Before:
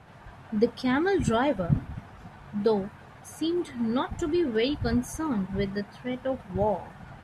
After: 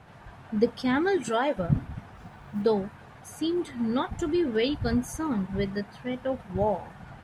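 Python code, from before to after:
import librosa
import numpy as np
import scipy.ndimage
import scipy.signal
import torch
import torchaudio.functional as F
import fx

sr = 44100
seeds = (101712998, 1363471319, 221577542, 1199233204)

y = fx.highpass(x, sr, hz=340.0, slope=12, at=(1.17, 1.57))
y = fx.quant_companded(y, sr, bits=8, at=(2.15, 2.62))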